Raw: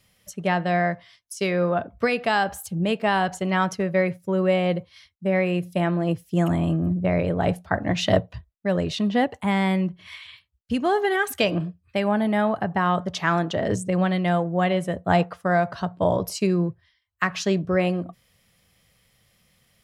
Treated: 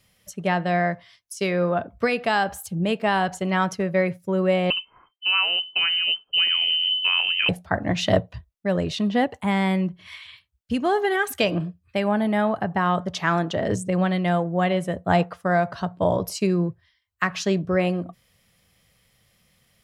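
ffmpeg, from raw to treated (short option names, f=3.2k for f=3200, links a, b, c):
-filter_complex "[0:a]asettb=1/sr,asplit=3[a][b][c];[a]atrim=end=4.704[d];[b]atrim=start=4.7:end=7.49,asetpts=PTS-STARTPTS,afade=t=in:d=0.004:c=qsin,afade=t=out:st=2.786:d=0.004:c=qsin,lowpass=f=2.7k:t=q:w=0.5098,lowpass=f=2.7k:t=q:w=0.6013,lowpass=f=2.7k:t=q:w=0.9,lowpass=f=2.7k:t=q:w=2.563,afreqshift=-3200[e];[c]atrim=start=7.486[f];[d][e]acrossfade=d=0.004:c1=hsin:c2=qsin[g];[g][f]acrossfade=d=0.004:c1=qsin:c2=hsin"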